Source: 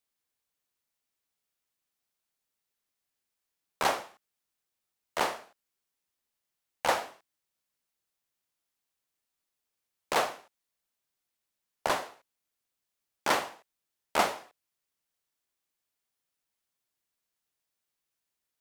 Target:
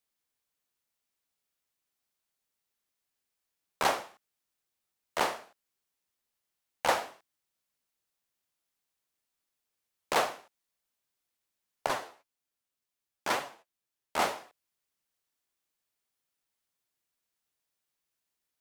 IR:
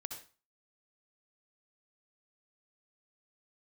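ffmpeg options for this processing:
-filter_complex "[0:a]asettb=1/sr,asplit=3[s0][s1][s2];[s0]atrim=end=11.864[s3];[s1]atrim=start=11.86:end=14.22,asetpts=PTS-STARTPTS,afade=t=in:d=0.004:c=qsin,afade=t=out:st=2.356:d=0.004:c=qsin,flanger=delay=6.9:depth=5.1:regen=29:speed=1.9:shape=sinusoidal[s4];[s2]atrim=start=14.216[s5];[s3][s4]acrossfade=d=0.004:c1=hsin:c2=qsin[s6];[s6][s5]acrossfade=d=0.004:c1=qsin:c2=hsin"

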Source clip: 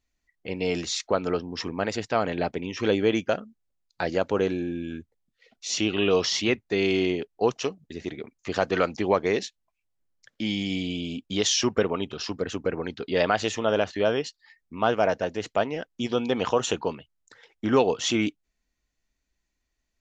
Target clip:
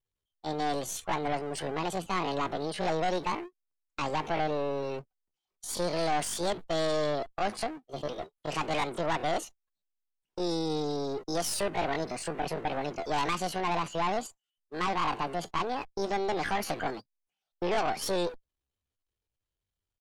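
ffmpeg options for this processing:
-filter_complex "[0:a]aeval=exprs='val(0)+0.5*0.0211*sgn(val(0))':c=same,acrossover=split=320[s0][s1];[s0]acompressor=threshold=0.0562:ratio=5[s2];[s2][s1]amix=inputs=2:normalize=0,agate=range=0.0251:threshold=0.0224:ratio=16:detection=peak,aemphasis=mode=reproduction:type=50fm,aeval=exprs='(tanh(17.8*val(0)+0.65)-tanh(0.65))/17.8':c=same,afftdn=nr=13:nf=-50,adynamicequalizer=threshold=0.002:dfrequency=3200:dqfactor=4.3:tfrequency=3200:tqfactor=4.3:attack=5:release=100:ratio=0.375:range=3.5:mode=cutabove:tftype=bell,asetrate=72056,aresample=44100,atempo=0.612027"

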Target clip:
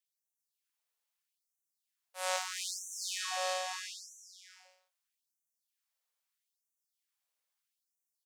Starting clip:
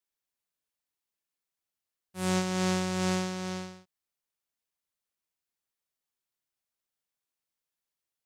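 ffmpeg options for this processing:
-filter_complex "[0:a]aecho=1:1:380|646|832.2|962.5|1054:0.631|0.398|0.251|0.158|0.1,asettb=1/sr,asplit=3[s0][s1][s2];[s0]atrim=end=2.364[s3];[s1]atrim=start=2.36:end=3.21,asetpts=PTS-STARTPTS,afade=t=in:d=0.004:c=qsin,afade=t=out:st=0.846:d=0.004:c=qsin,aeval=exprs='clip(val(0),-1,0.0266)':c=same[s4];[s2]atrim=start=3.206[s5];[s3][s4]acrossfade=d=0.004:c1=hsin:c2=qsin[s6];[s6][s5]acrossfade=d=0.004:c1=qsin:c2=hsin,afftfilt=real='re*gte(b*sr/1024,400*pow(5800/400,0.5+0.5*sin(2*PI*0.78*pts/sr)))':imag='im*gte(b*sr/1024,400*pow(5800/400,0.5+0.5*sin(2*PI*0.78*pts/sr)))':win_size=1024:overlap=0.75"

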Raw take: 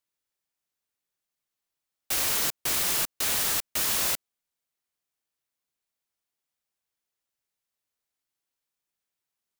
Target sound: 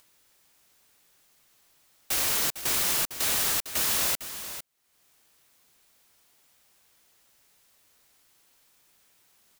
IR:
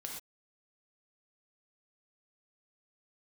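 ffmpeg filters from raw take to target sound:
-af "acompressor=mode=upward:threshold=0.00562:ratio=2.5,aecho=1:1:454:0.266"

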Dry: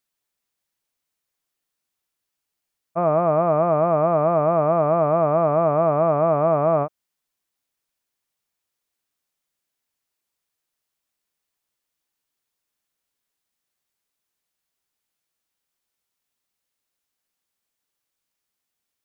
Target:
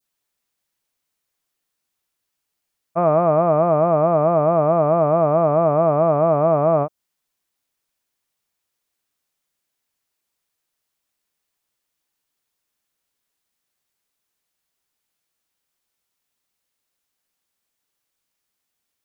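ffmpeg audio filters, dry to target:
-af "adynamicequalizer=threshold=0.0158:dfrequency=1900:dqfactor=0.86:tfrequency=1900:tqfactor=0.86:attack=5:release=100:ratio=0.375:range=2.5:mode=cutabove:tftype=bell,volume=1.41"

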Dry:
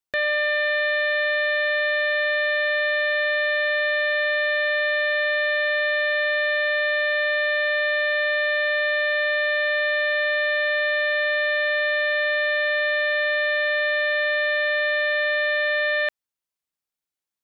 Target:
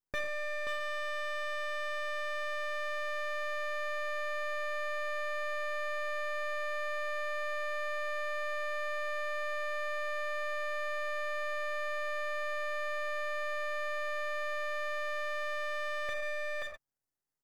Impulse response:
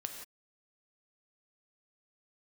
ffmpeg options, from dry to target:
-filter_complex "[0:a]aecho=1:1:530:0.447,acrossover=split=1200|2000[s0][s1][s2];[s0]dynaudnorm=f=480:g=13:m=2[s3];[s3][s1][s2]amix=inputs=3:normalize=0,alimiter=limit=0.075:level=0:latency=1:release=171,highshelf=f=2900:g=-4[s4];[1:a]atrim=start_sample=2205,afade=t=out:st=0.19:d=0.01,atrim=end_sample=8820[s5];[s4][s5]afir=irnorm=-1:irlink=0,asplit=2[s6][s7];[s7]aeval=exprs='clip(val(0),-1,0.0133)':c=same,volume=0.355[s8];[s6][s8]amix=inputs=2:normalize=0,asuperstop=centerf=3100:order=20:qfactor=1.3,lowshelf=f=440:g=8,aecho=1:1:7.4:0.35,aeval=exprs='max(val(0),0)':c=same"

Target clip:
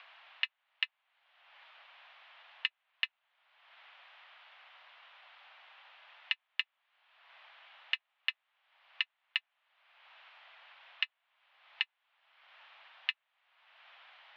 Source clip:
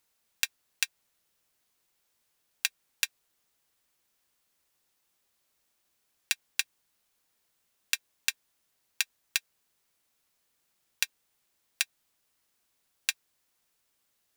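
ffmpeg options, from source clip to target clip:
-af "acompressor=mode=upward:threshold=0.0447:ratio=2.5,highpass=f=470:t=q:w=0.5412,highpass=f=470:t=q:w=1.307,lowpass=f=3100:t=q:w=0.5176,lowpass=f=3100:t=q:w=0.7071,lowpass=f=3100:t=q:w=1.932,afreqshift=200"

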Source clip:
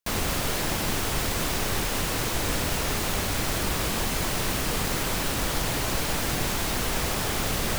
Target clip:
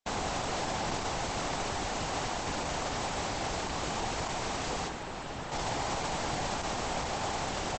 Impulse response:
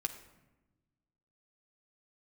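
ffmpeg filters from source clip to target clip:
-filter_complex "[0:a]asplit=2[s0][s1];[s1]aecho=0:1:65|130|195:0.0708|0.0354|0.0177[s2];[s0][s2]amix=inputs=2:normalize=0,asettb=1/sr,asplit=3[s3][s4][s5];[s3]atrim=end=4.884[s6];[s4]atrim=start=4.88:end=5.52,asetpts=PTS-STARTPTS,afade=t=in:d=0.004:c=qsin,afade=t=out:st=0.636:d=0.004:c=qsin,acrossover=split=210|470|1100|3300[s7][s8][s9][s10][s11];[s7]acompressor=threshold=0.02:ratio=4[s12];[s8]acompressor=threshold=0.00794:ratio=4[s13];[s9]acompressor=threshold=0.00501:ratio=4[s14];[s10]acompressor=threshold=0.00891:ratio=4[s15];[s11]acompressor=threshold=0.00631:ratio=4[s16];[s12][s13][s14][s15][s16]amix=inputs=5:normalize=0[s17];[s5]atrim=start=5.516[s18];[s6][s17]acrossfade=d=0.004:c1=hsin:c2=qsin[s19];[s19][s18]acrossfade=d=0.004:c1=qsin:c2=hsin,equalizer=f=790:t=o:w=0.72:g=10,alimiter=limit=0.141:level=0:latency=1:release=15,lowshelf=f=67:g=-5.5,volume=0.562" -ar 48000 -c:a libopus -b:a 12k

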